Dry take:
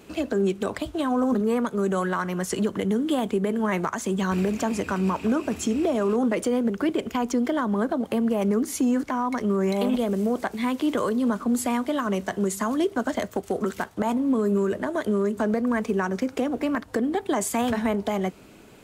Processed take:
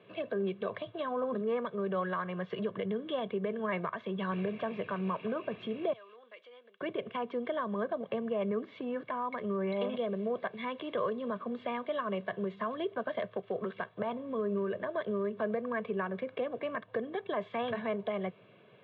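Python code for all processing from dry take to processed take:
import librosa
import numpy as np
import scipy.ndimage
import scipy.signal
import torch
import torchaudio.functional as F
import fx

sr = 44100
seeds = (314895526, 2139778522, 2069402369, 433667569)

y = fx.chain(x, sr, fx.highpass(hz=270.0, slope=12),
    fx.differentiator(), at=(5.93, 6.81))
y = scipy.signal.sosfilt(scipy.signal.cheby1(5, 1.0, [110.0, 3600.0], 'bandpass', fs=sr, output='sos'), y)
y = y + 0.68 * np.pad(y, (int(1.8 * sr / 1000.0), 0))[:len(y)]
y = F.gain(torch.from_numpy(y), -9.0).numpy()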